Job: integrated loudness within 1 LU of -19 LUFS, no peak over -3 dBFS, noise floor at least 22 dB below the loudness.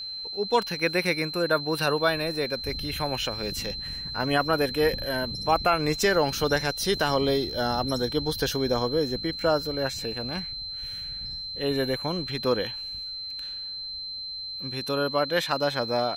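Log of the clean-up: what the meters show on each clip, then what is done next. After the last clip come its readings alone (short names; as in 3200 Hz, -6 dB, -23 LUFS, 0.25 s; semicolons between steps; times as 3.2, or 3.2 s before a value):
steady tone 4100 Hz; tone level -33 dBFS; loudness -26.5 LUFS; peak -9.5 dBFS; loudness target -19.0 LUFS
-> notch 4100 Hz, Q 30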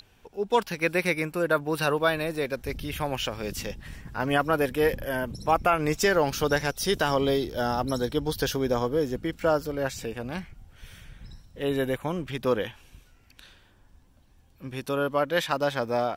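steady tone none; loudness -27.0 LUFS; peak -10.0 dBFS; loudness target -19.0 LUFS
-> gain +8 dB; limiter -3 dBFS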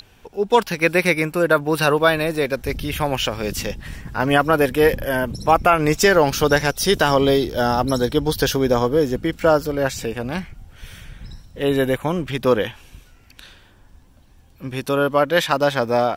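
loudness -19.0 LUFS; peak -3.0 dBFS; noise floor -51 dBFS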